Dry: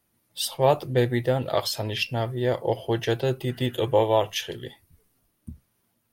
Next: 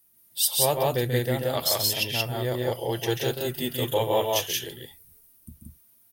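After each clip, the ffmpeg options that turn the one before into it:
-filter_complex "[0:a]aemphasis=mode=production:type=75fm,asplit=2[a][b];[b]aecho=0:1:137|177.8:0.501|0.891[c];[a][c]amix=inputs=2:normalize=0,volume=-5dB"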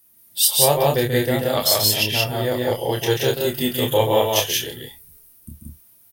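-filter_complex "[0:a]asplit=2[a][b];[b]adelay=28,volume=-5dB[c];[a][c]amix=inputs=2:normalize=0,volume=5.5dB"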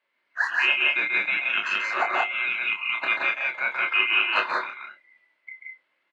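-af "afftfilt=real='real(if(lt(b,920),b+92*(1-2*mod(floor(b/92),2)),b),0)':imag='imag(if(lt(b,920),b+92*(1-2*mod(floor(b/92),2)),b),0)':win_size=2048:overlap=0.75,highpass=430,equalizer=f=450:t=q:w=4:g=-7,equalizer=f=770:t=q:w=4:g=-8,equalizer=f=1.2k:t=q:w=4:g=-6,equalizer=f=2.3k:t=q:w=4:g=-10,lowpass=f=2.5k:w=0.5412,lowpass=f=2.5k:w=1.3066,volume=4.5dB"

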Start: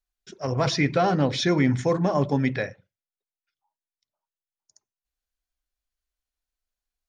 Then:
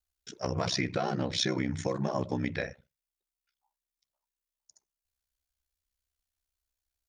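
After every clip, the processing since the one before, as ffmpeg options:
-af "aeval=exprs='val(0)*sin(2*PI*32*n/s)':c=same,acompressor=threshold=-27dB:ratio=6,highshelf=f=3.8k:g=6.5"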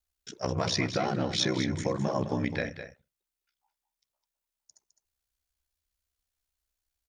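-af "aecho=1:1:209:0.316,volume=1.5dB"

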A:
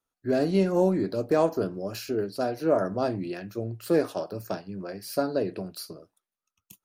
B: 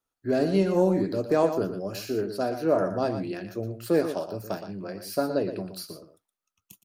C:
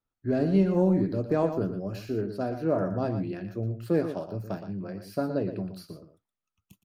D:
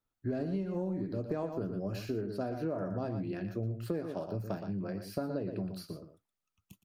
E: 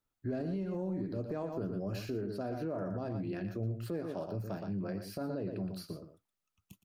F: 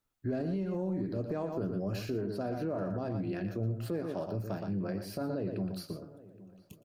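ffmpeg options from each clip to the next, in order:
-af "aecho=1:1:118:0.335"
-af "bass=f=250:g=10,treble=f=4k:g=-9,volume=-4.5dB"
-af "acompressor=threshold=-31dB:ratio=10"
-af "alimiter=level_in=4.5dB:limit=-24dB:level=0:latency=1:release=28,volume=-4.5dB"
-filter_complex "[0:a]asplit=2[a][b];[b]adelay=819,lowpass=f=1.7k:p=1,volume=-19.5dB,asplit=2[c][d];[d]adelay=819,lowpass=f=1.7k:p=1,volume=0.41,asplit=2[e][f];[f]adelay=819,lowpass=f=1.7k:p=1,volume=0.41[g];[a][c][e][g]amix=inputs=4:normalize=0,volume=2.5dB"

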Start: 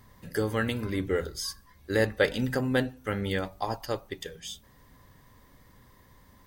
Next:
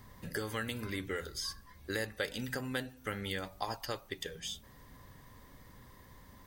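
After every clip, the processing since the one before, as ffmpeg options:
-filter_complex "[0:a]acrossover=split=1200|4800[a][b][c];[a]acompressor=threshold=-40dB:ratio=4[d];[b]acompressor=threshold=-40dB:ratio=4[e];[c]acompressor=threshold=-46dB:ratio=4[f];[d][e][f]amix=inputs=3:normalize=0,volume=1dB"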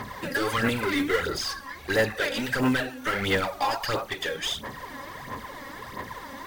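-filter_complex "[0:a]asplit=2[a][b];[b]highpass=f=720:p=1,volume=29dB,asoftclip=type=tanh:threshold=-17.5dB[c];[a][c]amix=inputs=2:normalize=0,lowpass=f=2.1k:p=1,volume=-6dB,aphaser=in_gain=1:out_gain=1:delay=3.7:decay=0.6:speed=1.5:type=sinusoidal,acrusher=bits=6:mode=log:mix=0:aa=0.000001"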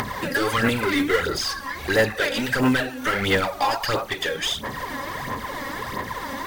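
-af "acompressor=mode=upward:threshold=-27dB:ratio=2.5,volume=4dB"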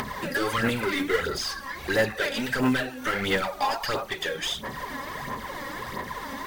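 -af "flanger=delay=4.5:depth=1.3:regen=-61:speed=0.79:shape=triangular"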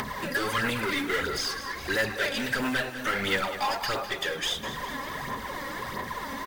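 -filter_complex "[0:a]acrossover=split=1100[a][b];[a]asoftclip=type=tanh:threshold=-28dB[c];[c][b]amix=inputs=2:normalize=0,aecho=1:1:204|408|612|816|1020|1224:0.237|0.133|0.0744|0.0416|0.0233|0.0131"

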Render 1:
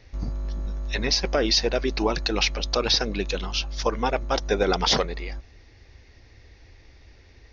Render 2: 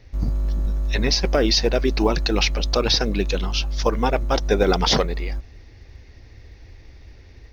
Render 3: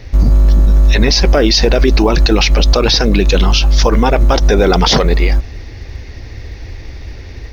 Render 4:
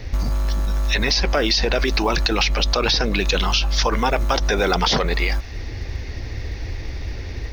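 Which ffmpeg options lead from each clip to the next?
-af "dynaudnorm=f=110:g=3:m=3dB,acrusher=bits=9:mode=log:mix=0:aa=0.000001,lowshelf=f=370:g=6,volume=-1.5dB"
-af "alimiter=level_in=17dB:limit=-1dB:release=50:level=0:latency=1,volume=-1dB"
-filter_complex "[0:a]acrossover=split=760|5600[a][b][c];[a]acompressor=threshold=-21dB:ratio=4[d];[b]acompressor=threshold=-19dB:ratio=4[e];[c]acompressor=threshold=-35dB:ratio=4[f];[d][e][f]amix=inputs=3:normalize=0"

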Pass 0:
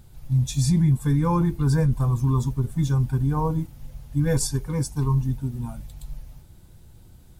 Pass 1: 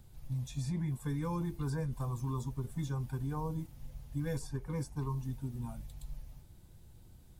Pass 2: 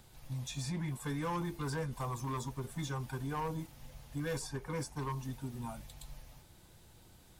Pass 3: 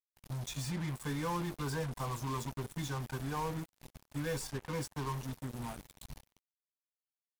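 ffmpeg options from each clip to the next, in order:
-filter_complex "[0:a]equalizer=f=1.4k:w=7.2:g=-3,acrossover=split=370|1100|2500[a][b][c][d];[a]acompressor=threshold=-28dB:ratio=4[e];[b]acompressor=threshold=-34dB:ratio=4[f];[c]acompressor=threshold=-46dB:ratio=4[g];[d]acompressor=threshold=-45dB:ratio=4[h];[e][f][g][h]amix=inputs=4:normalize=0,volume=-7.5dB"
-filter_complex "[0:a]asplit=2[a][b];[b]highpass=f=720:p=1,volume=15dB,asoftclip=type=tanh:threshold=-24.5dB[c];[a][c]amix=inputs=2:normalize=0,lowpass=f=6.7k:p=1,volume=-6dB,volume=30.5dB,asoftclip=hard,volume=-30.5dB,volume=-1dB"
-af "acrusher=bits=6:mix=0:aa=0.5"

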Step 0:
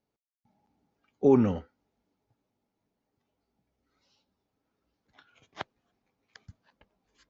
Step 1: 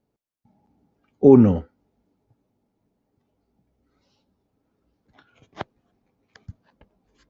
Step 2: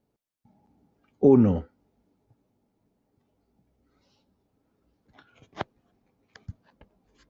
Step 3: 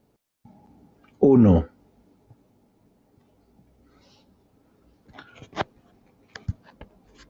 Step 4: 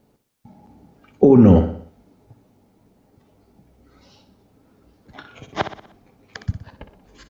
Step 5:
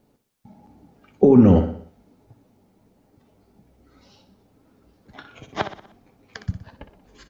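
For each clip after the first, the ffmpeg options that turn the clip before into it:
-af "tiltshelf=f=800:g=5.5,volume=5.5dB"
-af "acompressor=threshold=-22dB:ratio=1.5"
-af "alimiter=level_in=17dB:limit=-1dB:release=50:level=0:latency=1,volume=-6.5dB"
-af "aecho=1:1:61|122|183|244|305:0.299|0.149|0.0746|0.0373|0.0187,volume=4.5dB"
-af "flanger=delay=2.7:depth=3.1:regen=81:speed=1.3:shape=triangular,volume=2.5dB"

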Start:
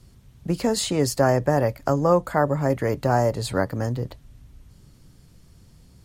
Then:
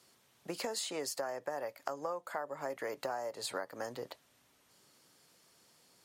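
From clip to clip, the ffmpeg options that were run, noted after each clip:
-af "highpass=550,acompressor=threshold=-32dB:ratio=12,volume=-2.5dB"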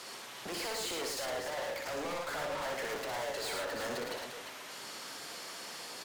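-filter_complex "[0:a]asplit=2[a][b];[b]highpass=f=720:p=1,volume=33dB,asoftclip=type=tanh:threshold=-19dB[c];[a][c]amix=inputs=2:normalize=0,lowpass=f=3.4k:p=1,volume=-6dB,asoftclip=type=tanh:threshold=-36.5dB,asplit=2[d][e];[e]aecho=0:1:60|110|350:0.562|0.596|0.376[f];[d][f]amix=inputs=2:normalize=0,volume=-2dB"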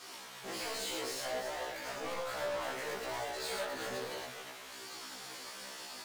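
-filter_complex "[0:a]asplit=2[a][b];[b]acrusher=bits=6:mix=0:aa=0.000001,volume=-10dB[c];[a][c]amix=inputs=2:normalize=0,flanger=delay=18:depth=7.9:speed=0.61,afftfilt=real='re*1.73*eq(mod(b,3),0)':imag='im*1.73*eq(mod(b,3),0)':win_size=2048:overlap=0.75,volume=1.5dB"

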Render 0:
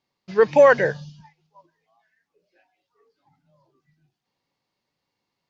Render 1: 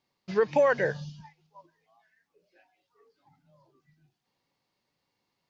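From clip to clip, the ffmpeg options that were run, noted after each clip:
-af "acompressor=threshold=-24dB:ratio=2.5"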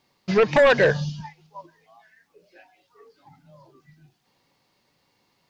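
-af "aeval=exprs='0.266*sin(PI/2*2.51*val(0)/0.266)':c=same"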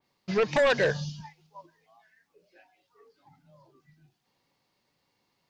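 -af "adynamicequalizer=threshold=0.0141:dfrequency=3500:dqfactor=0.7:tfrequency=3500:tqfactor=0.7:attack=5:release=100:ratio=0.375:range=3.5:mode=boostabove:tftype=highshelf,volume=-7dB"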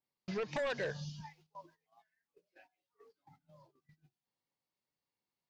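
-af "agate=range=-16dB:threshold=-59dB:ratio=16:detection=peak,acompressor=threshold=-39dB:ratio=2,volume=-3.5dB"

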